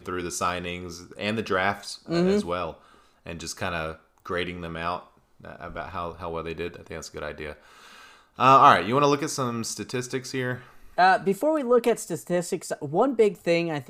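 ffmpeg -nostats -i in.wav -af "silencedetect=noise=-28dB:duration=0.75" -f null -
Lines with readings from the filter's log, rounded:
silence_start: 7.52
silence_end: 8.39 | silence_duration: 0.87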